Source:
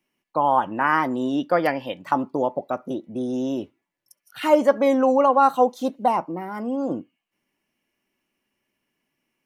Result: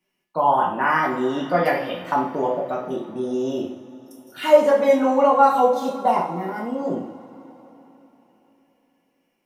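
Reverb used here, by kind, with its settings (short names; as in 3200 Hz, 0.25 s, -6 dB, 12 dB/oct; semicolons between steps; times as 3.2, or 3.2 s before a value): two-slope reverb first 0.5 s, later 3.9 s, from -20 dB, DRR -4 dB; gain -3.5 dB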